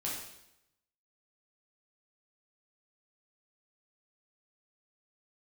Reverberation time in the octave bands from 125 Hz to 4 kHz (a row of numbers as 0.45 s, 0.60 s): 0.85 s, 0.85 s, 0.85 s, 0.80 s, 0.80 s, 0.80 s